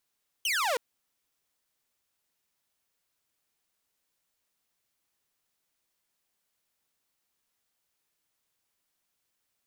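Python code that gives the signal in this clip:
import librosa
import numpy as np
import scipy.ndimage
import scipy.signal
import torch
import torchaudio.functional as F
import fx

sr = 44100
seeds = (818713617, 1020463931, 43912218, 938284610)

y = fx.laser_zap(sr, level_db=-23.0, start_hz=3200.0, end_hz=450.0, length_s=0.32, wave='saw')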